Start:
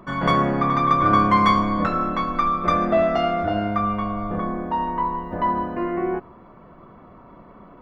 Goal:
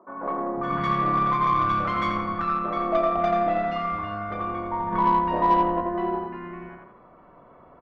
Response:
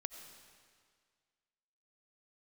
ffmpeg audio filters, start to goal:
-filter_complex "[0:a]asplit=2[link_01][link_02];[link_02]highpass=frequency=720:poles=1,volume=11dB,asoftclip=type=tanh:threshold=-5.5dB[link_03];[link_01][link_03]amix=inputs=2:normalize=0,lowpass=frequency=1300:poles=1,volume=-6dB,acrossover=split=250|1200[link_04][link_05][link_06];[link_04]adelay=490[link_07];[link_06]adelay=560[link_08];[link_07][link_05][link_08]amix=inputs=3:normalize=0,asplit=3[link_09][link_10][link_11];[link_09]afade=type=out:start_time=4.91:duration=0.02[link_12];[link_10]acontrast=82,afade=type=in:start_time=4.91:duration=0.02,afade=type=out:start_time=5.8:duration=0.02[link_13];[link_11]afade=type=in:start_time=5.8:duration=0.02[link_14];[link_12][link_13][link_14]amix=inputs=3:normalize=0,asplit=2[link_15][link_16];[link_16]adelay=86,lowpass=frequency=3800:poles=1,volume=-3.5dB,asplit=2[link_17][link_18];[link_18]adelay=86,lowpass=frequency=3800:poles=1,volume=0.44,asplit=2[link_19][link_20];[link_20]adelay=86,lowpass=frequency=3800:poles=1,volume=0.44,asplit=2[link_21][link_22];[link_22]adelay=86,lowpass=frequency=3800:poles=1,volume=0.44,asplit=2[link_23][link_24];[link_24]adelay=86,lowpass=frequency=3800:poles=1,volume=0.44,asplit=2[link_25][link_26];[link_26]adelay=86,lowpass=frequency=3800:poles=1,volume=0.44[link_27];[link_17][link_19][link_21][link_23][link_25][link_27]amix=inputs=6:normalize=0[link_28];[link_15][link_28]amix=inputs=2:normalize=0,aeval=exprs='0.562*(cos(1*acos(clip(val(0)/0.562,-1,1)))-cos(1*PI/2))+0.0355*(cos(3*acos(clip(val(0)/0.562,-1,1)))-cos(3*PI/2))+0.01*(cos(6*acos(clip(val(0)/0.562,-1,1)))-cos(6*PI/2))':channel_layout=same,volume=-4.5dB"

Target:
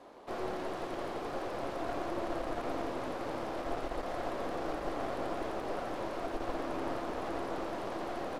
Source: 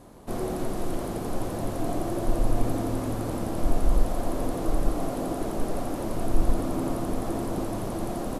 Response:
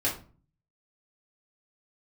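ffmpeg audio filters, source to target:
-filter_complex "[0:a]acrossover=split=340 5000:gain=0.0794 1 0.1[link_01][link_02][link_03];[link_01][link_02][link_03]amix=inputs=3:normalize=0,aeval=exprs='clip(val(0),-1,0.00794)':channel_layout=same,asplit=2[link_04][link_05];[1:a]atrim=start_sample=2205[link_06];[link_05][link_06]afir=irnorm=-1:irlink=0,volume=-28.5dB[link_07];[link_04][link_07]amix=inputs=2:normalize=0"

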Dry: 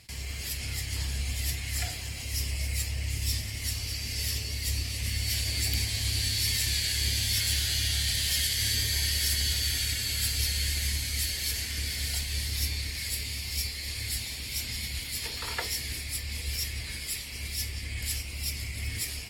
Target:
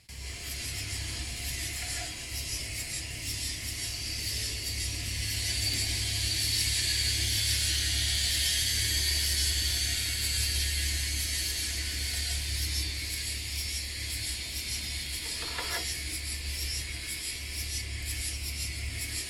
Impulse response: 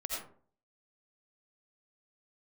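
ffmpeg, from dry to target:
-filter_complex "[1:a]atrim=start_sample=2205,atrim=end_sample=4410,asetrate=23373,aresample=44100[link_01];[0:a][link_01]afir=irnorm=-1:irlink=0,volume=-5dB"

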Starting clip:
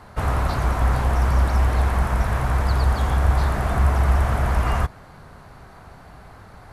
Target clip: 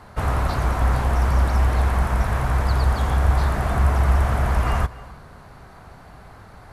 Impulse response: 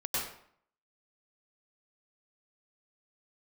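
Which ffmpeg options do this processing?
-filter_complex "[0:a]asplit=2[link_01][link_02];[1:a]atrim=start_sample=2205,adelay=148[link_03];[link_02][link_03]afir=irnorm=-1:irlink=0,volume=-25.5dB[link_04];[link_01][link_04]amix=inputs=2:normalize=0"

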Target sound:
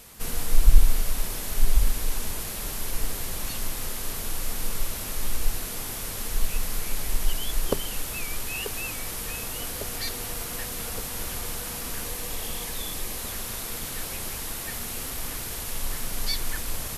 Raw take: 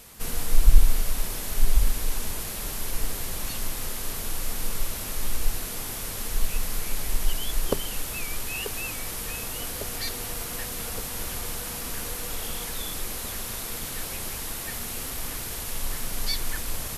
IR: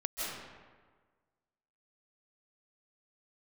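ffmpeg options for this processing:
-filter_complex "[0:a]asettb=1/sr,asplit=3[link_01][link_02][link_03];[link_01]atrim=end=12.054[link_04];[link_02]atrim=start=12.05:end=13.19,asetpts=PTS-STARTPTS,afade=type=in:duration=0.004:curve=qsin,afade=type=out:start_time=1.136:duration=0.004:curve=qsin,bandreject=frequency=1400:width=9.2[link_05];[link_03]atrim=start=13.186[link_06];[link_04][link_05]acrossfade=duration=0.004:curve1=hsin:curve2=qsin[link_07];[link_07][link_06]acrossfade=duration=0.004:curve1=qsin:curve2=hsin"

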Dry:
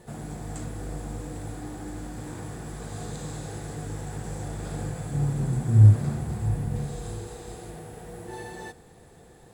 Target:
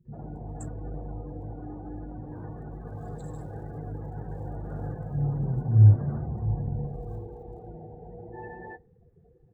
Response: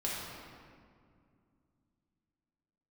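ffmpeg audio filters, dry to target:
-filter_complex "[0:a]acrossover=split=2900[link_01][link_02];[link_02]acrusher=bits=6:mix=0:aa=0.000001[link_03];[link_01][link_03]amix=inputs=2:normalize=0,afftdn=noise_reduction=26:noise_floor=-42,acrossover=split=260[link_04][link_05];[link_05]adelay=50[link_06];[link_04][link_06]amix=inputs=2:normalize=0,volume=-1dB"

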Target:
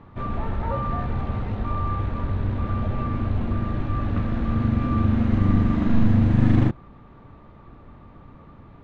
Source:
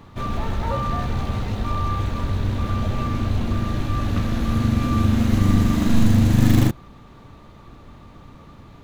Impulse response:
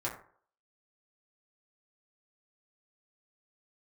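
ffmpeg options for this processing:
-af "lowpass=2000,volume=-2dB"

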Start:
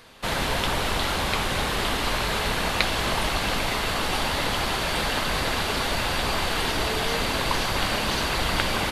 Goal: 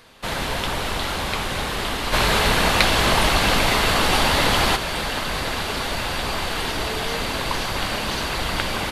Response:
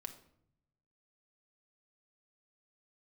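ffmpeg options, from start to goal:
-filter_complex "[0:a]asplit=3[link_01][link_02][link_03];[link_01]afade=type=out:start_time=2.12:duration=0.02[link_04];[link_02]acontrast=88,afade=type=in:start_time=2.12:duration=0.02,afade=type=out:start_time=4.75:duration=0.02[link_05];[link_03]afade=type=in:start_time=4.75:duration=0.02[link_06];[link_04][link_05][link_06]amix=inputs=3:normalize=0"

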